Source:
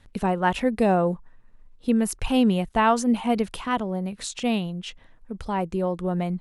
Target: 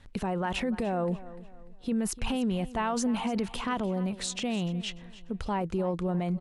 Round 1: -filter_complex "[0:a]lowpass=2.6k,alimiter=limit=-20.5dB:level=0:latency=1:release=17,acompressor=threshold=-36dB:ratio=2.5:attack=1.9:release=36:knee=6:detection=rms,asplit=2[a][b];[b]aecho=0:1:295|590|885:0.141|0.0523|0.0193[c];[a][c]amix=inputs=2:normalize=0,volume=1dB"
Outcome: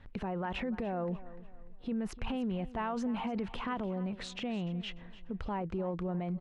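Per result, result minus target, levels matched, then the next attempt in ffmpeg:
8000 Hz band -12.5 dB; compressor: peak gain reduction +6 dB
-filter_complex "[0:a]lowpass=9.2k,alimiter=limit=-20.5dB:level=0:latency=1:release=17,acompressor=threshold=-36dB:ratio=2.5:attack=1.9:release=36:knee=6:detection=rms,asplit=2[a][b];[b]aecho=0:1:295|590|885:0.141|0.0523|0.0193[c];[a][c]amix=inputs=2:normalize=0,volume=1dB"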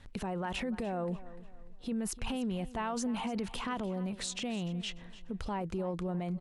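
compressor: peak gain reduction +6 dB
-filter_complex "[0:a]lowpass=9.2k,alimiter=limit=-20.5dB:level=0:latency=1:release=17,acompressor=threshold=-25.5dB:ratio=2.5:attack=1.9:release=36:knee=6:detection=rms,asplit=2[a][b];[b]aecho=0:1:295|590|885:0.141|0.0523|0.0193[c];[a][c]amix=inputs=2:normalize=0,volume=1dB"

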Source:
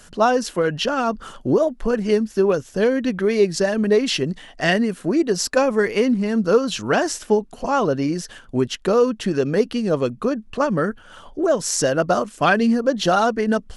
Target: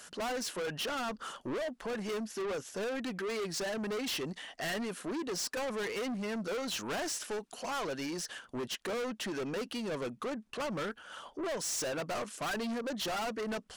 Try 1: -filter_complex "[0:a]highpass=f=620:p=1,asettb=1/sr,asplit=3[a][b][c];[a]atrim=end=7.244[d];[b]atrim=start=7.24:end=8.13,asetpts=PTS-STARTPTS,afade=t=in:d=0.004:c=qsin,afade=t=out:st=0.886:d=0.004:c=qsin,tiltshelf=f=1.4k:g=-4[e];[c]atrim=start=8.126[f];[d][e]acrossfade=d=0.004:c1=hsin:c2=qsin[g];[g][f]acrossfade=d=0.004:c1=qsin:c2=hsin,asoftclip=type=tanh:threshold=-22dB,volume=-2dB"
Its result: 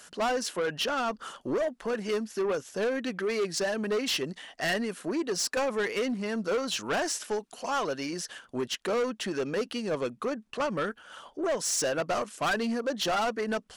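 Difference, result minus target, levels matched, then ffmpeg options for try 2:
soft clip: distortion -5 dB
-filter_complex "[0:a]highpass=f=620:p=1,asettb=1/sr,asplit=3[a][b][c];[a]atrim=end=7.244[d];[b]atrim=start=7.24:end=8.13,asetpts=PTS-STARTPTS,afade=t=in:d=0.004:c=qsin,afade=t=out:st=0.886:d=0.004:c=qsin,tiltshelf=f=1.4k:g=-4[e];[c]atrim=start=8.126[f];[d][e]acrossfade=d=0.004:c1=hsin:c2=qsin[g];[g][f]acrossfade=d=0.004:c1=qsin:c2=hsin,asoftclip=type=tanh:threshold=-31.5dB,volume=-2dB"

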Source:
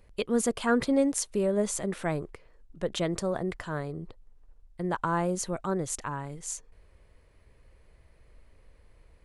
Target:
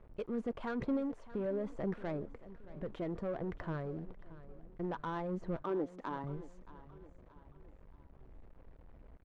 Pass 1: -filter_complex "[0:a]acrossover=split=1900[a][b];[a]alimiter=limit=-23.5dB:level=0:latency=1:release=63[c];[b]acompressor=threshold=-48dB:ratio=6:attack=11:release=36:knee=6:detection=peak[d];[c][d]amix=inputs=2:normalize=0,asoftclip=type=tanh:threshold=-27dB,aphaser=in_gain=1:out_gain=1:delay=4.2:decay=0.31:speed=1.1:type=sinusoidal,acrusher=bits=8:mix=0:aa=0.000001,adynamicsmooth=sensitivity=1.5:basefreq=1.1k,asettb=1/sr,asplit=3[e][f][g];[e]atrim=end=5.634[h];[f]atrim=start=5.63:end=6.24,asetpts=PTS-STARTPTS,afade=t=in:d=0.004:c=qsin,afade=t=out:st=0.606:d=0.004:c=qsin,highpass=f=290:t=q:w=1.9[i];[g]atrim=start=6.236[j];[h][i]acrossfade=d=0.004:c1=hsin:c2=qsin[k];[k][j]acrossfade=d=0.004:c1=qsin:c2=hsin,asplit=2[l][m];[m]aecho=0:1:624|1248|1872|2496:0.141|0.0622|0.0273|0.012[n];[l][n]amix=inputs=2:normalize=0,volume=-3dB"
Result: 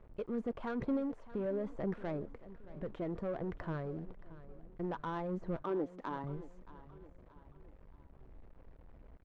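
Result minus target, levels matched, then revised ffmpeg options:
compressor: peak gain reduction +6.5 dB
-filter_complex "[0:a]acrossover=split=1900[a][b];[a]alimiter=limit=-23.5dB:level=0:latency=1:release=63[c];[b]acompressor=threshold=-40dB:ratio=6:attack=11:release=36:knee=6:detection=peak[d];[c][d]amix=inputs=2:normalize=0,asoftclip=type=tanh:threshold=-27dB,aphaser=in_gain=1:out_gain=1:delay=4.2:decay=0.31:speed=1.1:type=sinusoidal,acrusher=bits=8:mix=0:aa=0.000001,adynamicsmooth=sensitivity=1.5:basefreq=1.1k,asettb=1/sr,asplit=3[e][f][g];[e]atrim=end=5.634[h];[f]atrim=start=5.63:end=6.24,asetpts=PTS-STARTPTS,afade=t=in:d=0.004:c=qsin,afade=t=out:st=0.606:d=0.004:c=qsin,highpass=f=290:t=q:w=1.9[i];[g]atrim=start=6.236[j];[h][i]acrossfade=d=0.004:c1=hsin:c2=qsin[k];[k][j]acrossfade=d=0.004:c1=qsin:c2=hsin,asplit=2[l][m];[m]aecho=0:1:624|1248|1872|2496:0.141|0.0622|0.0273|0.012[n];[l][n]amix=inputs=2:normalize=0,volume=-3dB"

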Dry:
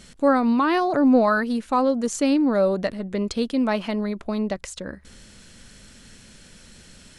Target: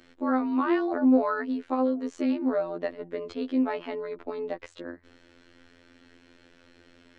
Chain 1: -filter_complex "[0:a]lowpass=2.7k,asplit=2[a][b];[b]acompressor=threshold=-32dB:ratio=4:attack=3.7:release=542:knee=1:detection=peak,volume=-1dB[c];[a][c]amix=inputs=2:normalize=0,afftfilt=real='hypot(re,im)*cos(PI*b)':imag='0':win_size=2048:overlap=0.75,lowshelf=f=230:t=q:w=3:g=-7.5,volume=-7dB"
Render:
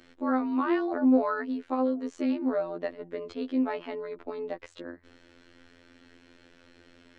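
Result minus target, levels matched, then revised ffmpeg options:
compressor: peak gain reduction +7 dB
-filter_complex "[0:a]lowpass=2.7k,asplit=2[a][b];[b]acompressor=threshold=-22.5dB:ratio=4:attack=3.7:release=542:knee=1:detection=peak,volume=-1dB[c];[a][c]amix=inputs=2:normalize=0,afftfilt=real='hypot(re,im)*cos(PI*b)':imag='0':win_size=2048:overlap=0.75,lowshelf=f=230:t=q:w=3:g=-7.5,volume=-7dB"

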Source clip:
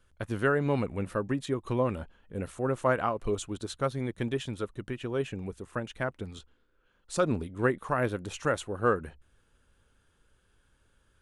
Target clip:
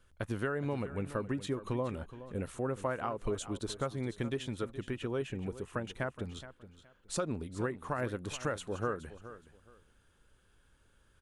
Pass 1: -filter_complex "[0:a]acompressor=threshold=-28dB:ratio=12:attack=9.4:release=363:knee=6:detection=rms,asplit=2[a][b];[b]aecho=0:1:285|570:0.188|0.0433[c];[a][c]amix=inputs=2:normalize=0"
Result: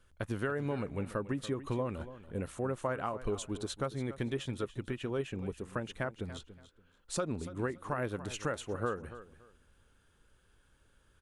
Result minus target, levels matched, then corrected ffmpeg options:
echo 0.135 s early
-filter_complex "[0:a]acompressor=threshold=-28dB:ratio=12:attack=9.4:release=363:knee=6:detection=rms,asplit=2[a][b];[b]aecho=0:1:420|840:0.188|0.0433[c];[a][c]amix=inputs=2:normalize=0"

